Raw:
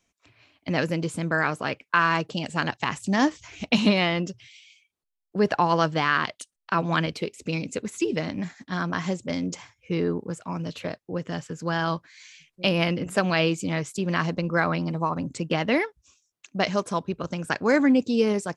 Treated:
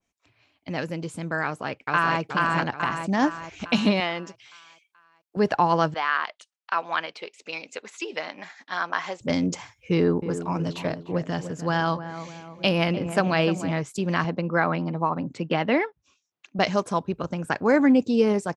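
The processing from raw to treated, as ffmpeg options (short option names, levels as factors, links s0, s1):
-filter_complex "[0:a]asplit=2[s0][s1];[s1]afade=t=in:st=1.44:d=0.01,afade=t=out:st=2.2:d=0.01,aecho=0:1:430|860|1290|1720|2150|2580|3010:0.841395|0.420698|0.210349|0.105174|0.0525872|0.0262936|0.0131468[s2];[s0][s2]amix=inputs=2:normalize=0,asettb=1/sr,asplit=3[s3][s4][s5];[s3]atrim=end=4.004[s6];[s4]atrim=start=4:end=5.37,asetpts=PTS-STARTPTS,afade=t=in:d=0.004:c=qsin,afade=t=out:st=1.366:d=0.004:c=qsin,highpass=f=540:p=1[s7];[s5]atrim=start=5.366[s8];[s6][s7]acrossfade=d=0.004:c1=hsin:c2=qsin[s9];[s9][s8]acrossfade=d=0.004:c1=qsin:c2=hsin,asettb=1/sr,asplit=3[s10][s11][s12];[s10]atrim=end=5.944[s13];[s11]atrim=start=5.94:end=9.21,asetpts=PTS-STARTPTS,afade=t=in:d=0.004:c=qsin,afade=t=out:st=3.266:d=0.004:c=qsin,highpass=720,lowpass=4900[s14];[s12]atrim=start=9.206[s15];[s13][s14]acrossfade=d=0.004:c1=hsin:c2=qsin[s16];[s16][s15]acrossfade=d=0.004:c1=qsin:c2=hsin,asettb=1/sr,asplit=3[s17][s18][s19];[s17]atrim=end=9.924[s20];[s18]atrim=start=9.92:end=13.71,asetpts=PTS-STARTPTS,afade=t=in:d=0.004:c=qsin,afade=t=out:st=3.786:d=0.004:c=qsin,asplit=2[s21][s22];[s22]adelay=300,lowpass=f=1300:p=1,volume=0.316,asplit=2[s23][s24];[s24]adelay=300,lowpass=f=1300:p=1,volume=0.54,asplit=2[s25][s26];[s26]adelay=300,lowpass=f=1300:p=1,volume=0.54,asplit=2[s27][s28];[s28]adelay=300,lowpass=f=1300:p=1,volume=0.54,asplit=2[s29][s30];[s30]adelay=300,lowpass=f=1300:p=1,volume=0.54,asplit=2[s31][s32];[s32]adelay=300,lowpass=f=1300:p=1,volume=0.54[s33];[s21][s23][s25][s27][s29][s31][s33]amix=inputs=7:normalize=0,atrim=end_sample=167139[s34];[s19]atrim=start=13.706[s35];[s20][s34]acrossfade=d=0.004:c1=hsin:c2=qsin[s36];[s36][s35]acrossfade=d=0.004:c1=qsin:c2=hsin,asettb=1/sr,asplit=3[s37][s38][s39];[s37]atrim=end=14.244[s40];[s38]atrim=start=14.24:end=16.59,asetpts=PTS-STARTPTS,afade=t=in:d=0.004:c=qsin,afade=t=out:st=2.346:d=0.004:c=qsin,highpass=130,lowpass=3700[s41];[s39]atrim=start=16.586[s42];[s40][s41]acrossfade=d=0.004:c1=hsin:c2=qsin[s43];[s43][s42]acrossfade=d=0.004:c1=qsin:c2=hsin,asettb=1/sr,asplit=3[s44][s45][s46];[s44]atrim=end=17.254[s47];[s45]atrim=start=17.25:end=17.83,asetpts=PTS-STARTPTS,afade=t=in:d=0.004:c=qsin,afade=t=out:st=0.576:d=0.004:c=qsin,equalizer=f=5300:t=o:w=2.2:g=-6.5[s48];[s46]atrim=start=17.826[s49];[s47][s48]acrossfade=d=0.004:c1=hsin:c2=qsin[s50];[s50][s49]acrossfade=d=0.004:c1=qsin:c2=hsin,equalizer=f=820:t=o:w=0.42:g=3,dynaudnorm=f=350:g=9:m=3.76,adynamicequalizer=threshold=0.0224:dfrequency=2100:dqfactor=0.7:tfrequency=2100:tqfactor=0.7:attack=5:release=100:ratio=0.375:range=3:mode=cutabove:tftype=highshelf,volume=0.531"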